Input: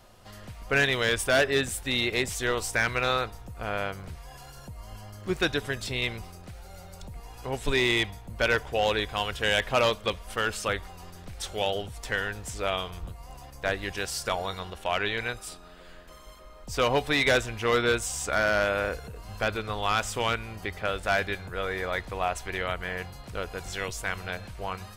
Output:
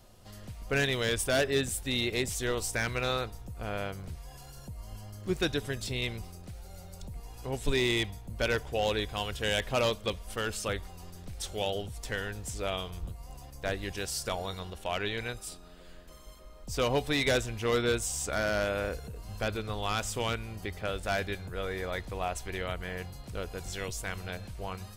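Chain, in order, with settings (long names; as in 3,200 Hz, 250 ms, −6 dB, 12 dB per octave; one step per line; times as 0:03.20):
parametric band 1,400 Hz −7.5 dB 2.7 octaves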